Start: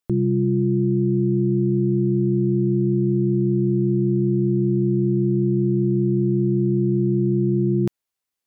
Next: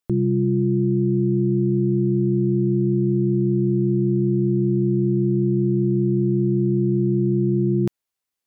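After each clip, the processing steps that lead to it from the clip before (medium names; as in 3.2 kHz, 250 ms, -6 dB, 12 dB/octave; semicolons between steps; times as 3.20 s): no audible change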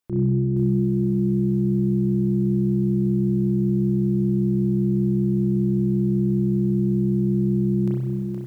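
peak limiter -22.5 dBFS, peak gain reduction 10.5 dB; spring tank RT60 1.3 s, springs 31 ms, chirp 35 ms, DRR -5 dB; bit-crushed delay 469 ms, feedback 35%, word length 9-bit, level -6 dB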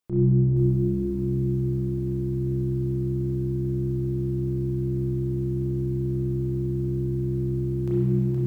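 simulated room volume 190 m³, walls hard, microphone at 0.53 m; trim -2.5 dB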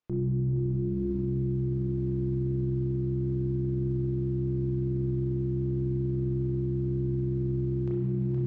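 peak limiter -22 dBFS, peak gain reduction 10.5 dB; distance through air 150 m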